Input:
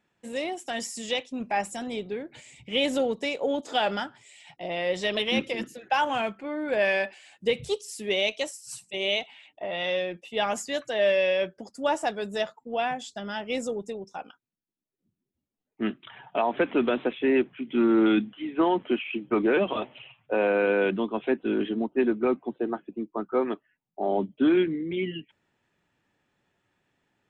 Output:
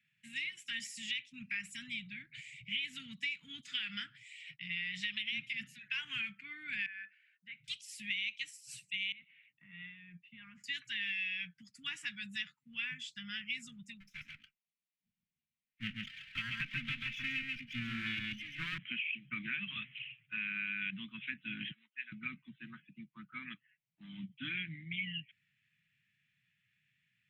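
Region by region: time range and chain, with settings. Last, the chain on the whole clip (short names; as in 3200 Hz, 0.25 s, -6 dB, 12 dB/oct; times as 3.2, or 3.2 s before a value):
6.86–7.68 double band-pass 950 Hz, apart 1.2 oct + tilt -1.5 dB/oct
9.12–10.64 LPF 1100 Hz + compressor 3:1, threshold -35 dBFS
14–18.78 minimum comb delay 3.8 ms + echo 0.136 s -4 dB
21.71–22.12 HPF 1300 Hz + tape spacing loss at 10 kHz 21 dB
whole clip: elliptic band-stop 140–2200 Hz, stop band 60 dB; three-band isolator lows -24 dB, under 160 Hz, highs -17 dB, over 2800 Hz; compressor, threshold -41 dBFS; gain +6.5 dB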